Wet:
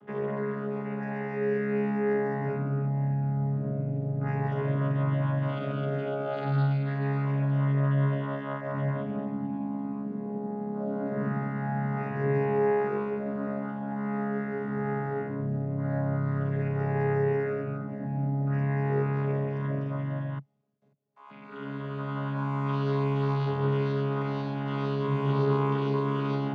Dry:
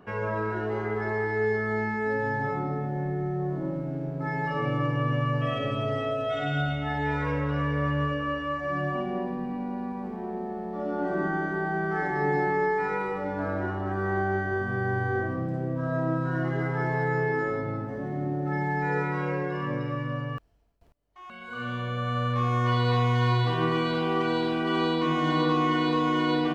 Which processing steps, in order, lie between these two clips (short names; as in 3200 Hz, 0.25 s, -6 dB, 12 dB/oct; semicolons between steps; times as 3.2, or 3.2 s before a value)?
chord vocoder bare fifth, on C#3